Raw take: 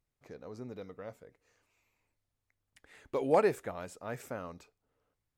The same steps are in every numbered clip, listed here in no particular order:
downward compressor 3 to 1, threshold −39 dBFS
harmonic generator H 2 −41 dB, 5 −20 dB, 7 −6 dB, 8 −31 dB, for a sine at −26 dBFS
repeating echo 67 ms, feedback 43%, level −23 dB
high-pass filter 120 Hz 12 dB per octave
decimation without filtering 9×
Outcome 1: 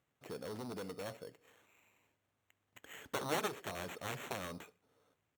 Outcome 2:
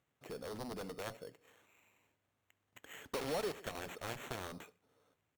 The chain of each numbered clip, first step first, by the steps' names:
downward compressor, then repeating echo, then decimation without filtering, then harmonic generator, then high-pass filter
repeating echo, then decimation without filtering, then high-pass filter, then harmonic generator, then downward compressor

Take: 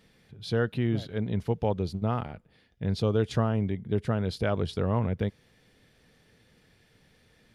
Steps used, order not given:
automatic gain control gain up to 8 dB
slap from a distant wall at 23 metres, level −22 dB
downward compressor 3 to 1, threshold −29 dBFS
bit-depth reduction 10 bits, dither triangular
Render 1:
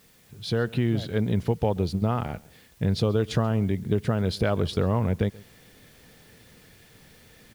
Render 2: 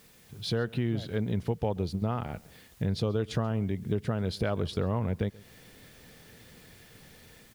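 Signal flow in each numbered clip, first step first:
downward compressor, then slap from a distant wall, then automatic gain control, then bit-depth reduction
automatic gain control, then bit-depth reduction, then downward compressor, then slap from a distant wall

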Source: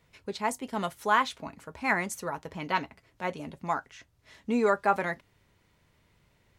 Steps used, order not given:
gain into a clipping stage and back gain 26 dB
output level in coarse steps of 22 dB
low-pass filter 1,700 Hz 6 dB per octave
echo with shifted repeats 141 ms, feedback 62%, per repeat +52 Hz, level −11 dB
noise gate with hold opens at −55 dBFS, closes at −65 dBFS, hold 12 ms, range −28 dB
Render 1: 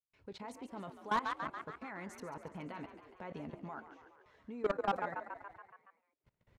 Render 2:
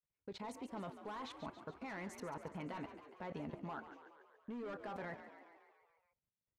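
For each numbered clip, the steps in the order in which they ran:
noise gate with hold, then output level in coarse steps, then echo with shifted repeats, then gain into a clipping stage and back, then low-pass filter
gain into a clipping stage and back, then output level in coarse steps, then low-pass filter, then noise gate with hold, then echo with shifted repeats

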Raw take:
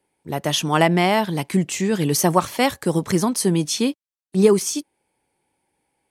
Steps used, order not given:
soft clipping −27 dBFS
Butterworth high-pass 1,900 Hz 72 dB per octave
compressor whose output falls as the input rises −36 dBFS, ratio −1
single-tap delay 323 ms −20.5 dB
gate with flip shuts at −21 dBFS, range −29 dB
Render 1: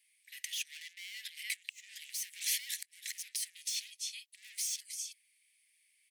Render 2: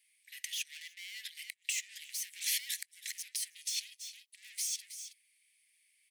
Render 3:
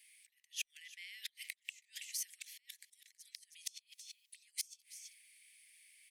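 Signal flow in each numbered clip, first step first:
single-tap delay, then soft clipping, then compressor whose output falls as the input rises, then Butterworth high-pass, then gate with flip
soft clipping, then single-tap delay, then compressor whose output falls as the input rises, then gate with flip, then Butterworth high-pass
compressor whose output falls as the input rises, then single-tap delay, then gate with flip, then soft clipping, then Butterworth high-pass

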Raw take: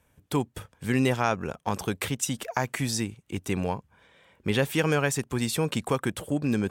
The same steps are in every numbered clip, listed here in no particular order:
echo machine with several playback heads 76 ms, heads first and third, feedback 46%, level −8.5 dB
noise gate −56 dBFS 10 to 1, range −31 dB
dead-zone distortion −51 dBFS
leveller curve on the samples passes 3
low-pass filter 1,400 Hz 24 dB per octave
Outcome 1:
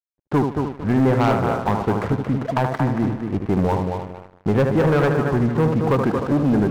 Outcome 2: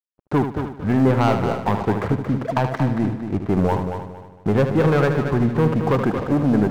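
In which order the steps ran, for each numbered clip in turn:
noise gate, then low-pass filter, then dead-zone distortion, then echo machine with several playback heads, then leveller curve on the samples
low-pass filter, then leveller curve on the samples, then dead-zone distortion, then noise gate, then echo machine with several playback heads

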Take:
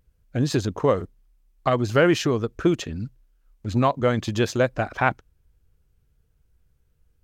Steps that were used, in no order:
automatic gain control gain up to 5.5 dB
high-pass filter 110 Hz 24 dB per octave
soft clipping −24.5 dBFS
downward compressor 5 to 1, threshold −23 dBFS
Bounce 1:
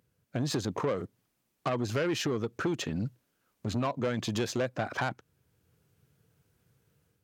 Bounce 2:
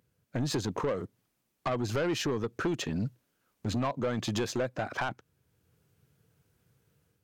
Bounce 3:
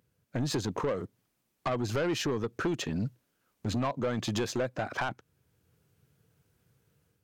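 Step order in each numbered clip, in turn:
automatic gain control, then downward compressor, then soft clipping, then high-pass filter
high-pass filter, then automatic gain control, then downward compressor, then soft clipping
automatic gain control, then high-pass filter, then downward compressor, then soft clipping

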